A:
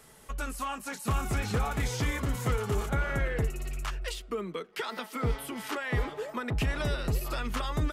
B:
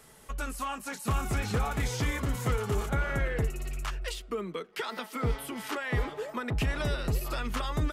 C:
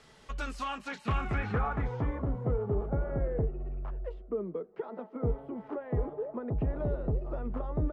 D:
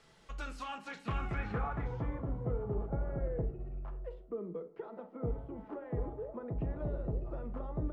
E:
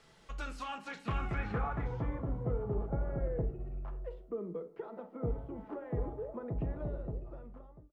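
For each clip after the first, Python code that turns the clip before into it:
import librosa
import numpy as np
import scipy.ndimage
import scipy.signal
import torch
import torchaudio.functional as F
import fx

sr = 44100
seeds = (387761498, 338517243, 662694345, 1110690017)

y1 = x
y2 = fx.filter_sweep_lowpass(y1, sr, from_hz=4600.0, to_hz=600.0, start_s=0.65, end_s=2.41, q=1.3)
y2 = y2 * 10.0 ** (-1.5 / 20.0)
y3 = fx.room_shoebox(y2, sr, seeds[0], volume_m3=450.0, walls='furnished', distance_m=0.76)
y3 = y3 * 10.0 ** (-6.0 / 20.0)
y4 = fx.fade_out_tail(y3, sr, length_s=1.37)
y4 = y4 * 10.0 ** (1.0 / 20.0)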